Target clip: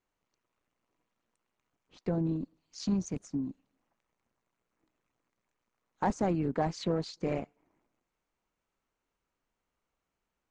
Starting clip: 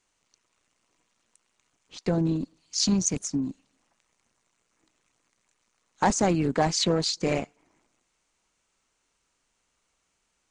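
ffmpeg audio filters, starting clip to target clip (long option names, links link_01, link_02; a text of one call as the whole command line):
ffmpeg -i in.wav -af "lowpass=frequency=1200:poles=1,volume=-5.5dB" out.wav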